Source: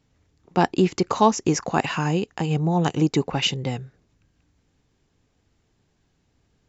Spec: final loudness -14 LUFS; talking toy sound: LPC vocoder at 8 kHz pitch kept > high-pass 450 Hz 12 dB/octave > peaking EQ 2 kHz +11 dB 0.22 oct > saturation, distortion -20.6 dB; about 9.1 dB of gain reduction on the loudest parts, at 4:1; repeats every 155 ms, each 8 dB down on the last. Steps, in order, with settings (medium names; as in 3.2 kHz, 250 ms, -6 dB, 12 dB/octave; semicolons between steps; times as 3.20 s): compression 4:1, threshold -24 dBFS; feedback delay 155 ms, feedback 40%, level -8 dB; LPC vocoder at 8 kHz pitch kept; high-pass 450 Hz 12 dB/octave; peaking EQ 2 kHz +11 dB 0.22 oct; saturation -19.5 dBFS; trim +20 dB